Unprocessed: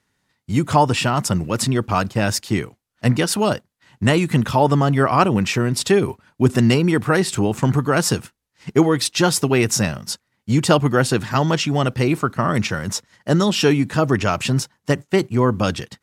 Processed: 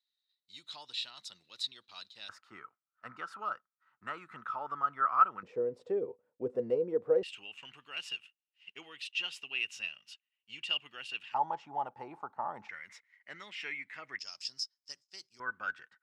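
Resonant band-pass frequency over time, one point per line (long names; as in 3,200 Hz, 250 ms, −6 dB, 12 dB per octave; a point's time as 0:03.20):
resonant band-pass, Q 15
3,900 Hz
from 0:02.29 1,300 Hz
from 0:05.43 490 Hz
from 0:07.23 2,800 Hz
from 0:11.34 850 Hz
from 0:12.69 2,100 Hz
from 0:14.19 5,100 Hz
from 0:15.40 1,500 Hz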